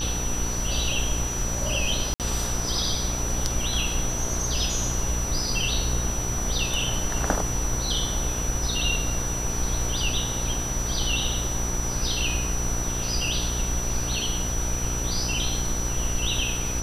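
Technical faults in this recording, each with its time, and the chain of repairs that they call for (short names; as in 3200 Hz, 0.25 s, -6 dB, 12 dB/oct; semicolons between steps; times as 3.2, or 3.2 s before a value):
buzz 60 Hz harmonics 28 -31 dBFS
tone 5900 Hz -30 dBFS
2.14–2.2 gap 58 ms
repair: de-hum 60 Hz, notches 28; notch 5900 Hz, Q 30; interpolate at 2.14, 58 ms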